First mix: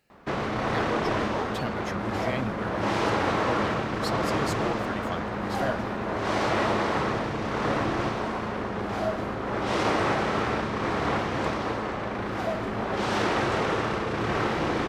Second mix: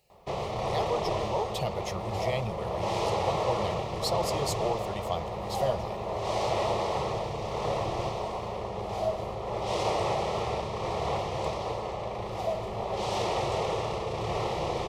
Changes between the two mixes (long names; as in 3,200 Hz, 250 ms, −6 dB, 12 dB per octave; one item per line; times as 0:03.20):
speech +5.0 dB
master: add phaser with its sweep stopped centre 640 Hz, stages 4